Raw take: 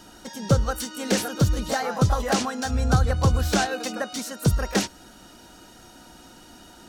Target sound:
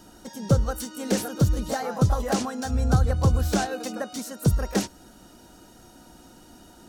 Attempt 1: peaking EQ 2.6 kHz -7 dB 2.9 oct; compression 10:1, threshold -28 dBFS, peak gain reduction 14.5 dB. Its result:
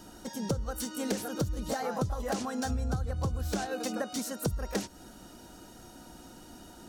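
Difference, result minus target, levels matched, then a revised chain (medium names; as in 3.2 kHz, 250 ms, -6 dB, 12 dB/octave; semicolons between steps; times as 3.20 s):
compression: peak gain reduction +14.5 dB
peaking EQ 2.6 kHz -7 dB 2.9 oct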